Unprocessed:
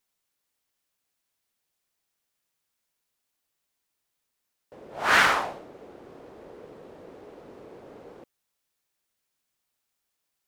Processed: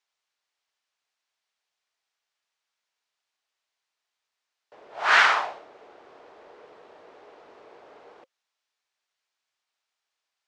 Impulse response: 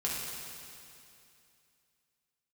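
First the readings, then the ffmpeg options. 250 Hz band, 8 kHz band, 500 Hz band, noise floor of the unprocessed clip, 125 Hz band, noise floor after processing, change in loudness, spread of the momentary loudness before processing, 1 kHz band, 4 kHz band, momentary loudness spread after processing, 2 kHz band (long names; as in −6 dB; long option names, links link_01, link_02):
−11.5 dB, −4.0 dB, −2.5 dB, −81 dBFS, below −15 dB, −85 dBFS, +1.5 dB, 13 LU, +1.5 dB, +1.5 dB, 14 LU, +2.0 dB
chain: -filter_complex "[0:a]lowpass=11000,acrossover=split=490 6700:gain=0.112 1 0.0794[link_01][link_02][link_03];[link_01][link_02][link_03]amix=inputs=3:normalize=0,bandreject=frequency=530:width=12,volume=2dB"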